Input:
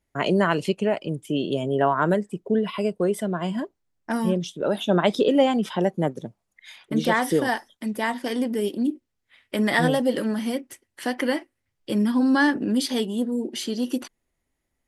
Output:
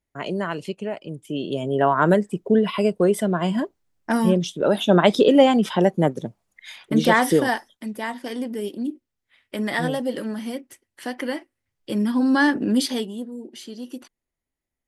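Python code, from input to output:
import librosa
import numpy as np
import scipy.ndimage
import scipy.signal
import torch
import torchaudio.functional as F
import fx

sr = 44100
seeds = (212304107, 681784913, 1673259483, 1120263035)

y = fx.gain(x, sr, db=fx.line((1.02, -6.0), (2.12, 4.5), (7.28, 4.5), (7.94, -3.5), (11.34, -3.5), (12.8, 3.0), (13.3, -9.0)))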